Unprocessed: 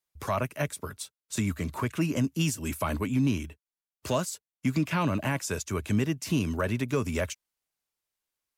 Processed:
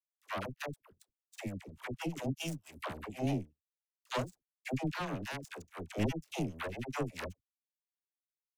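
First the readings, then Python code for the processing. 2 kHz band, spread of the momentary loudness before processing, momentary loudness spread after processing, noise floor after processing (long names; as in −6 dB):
−8.0 dB, 8 LU, 10 LU, below −85 dBFS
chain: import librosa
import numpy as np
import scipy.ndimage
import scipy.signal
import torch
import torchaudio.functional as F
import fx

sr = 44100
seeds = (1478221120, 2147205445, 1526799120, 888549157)

y = fx.power_curve(x, sr, exponent=3.0)
y = fx.dispersion(y, sr, late='lows', ms=83.0, hz=560.0)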